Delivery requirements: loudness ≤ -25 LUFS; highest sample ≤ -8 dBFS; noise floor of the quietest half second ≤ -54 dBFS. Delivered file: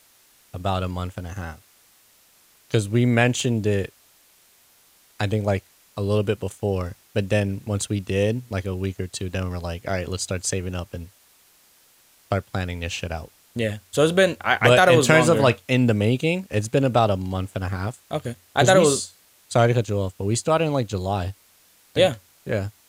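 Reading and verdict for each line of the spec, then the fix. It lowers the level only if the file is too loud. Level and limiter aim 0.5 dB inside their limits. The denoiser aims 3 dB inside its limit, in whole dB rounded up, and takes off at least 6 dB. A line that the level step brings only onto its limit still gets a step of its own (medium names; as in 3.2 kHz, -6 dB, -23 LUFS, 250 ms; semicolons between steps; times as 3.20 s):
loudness -22.5 LUFS: fail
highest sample -2.0 dBFS: fail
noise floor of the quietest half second -57 dBFS: pass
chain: trim -3 dB; peak limiter -8.5 dBFS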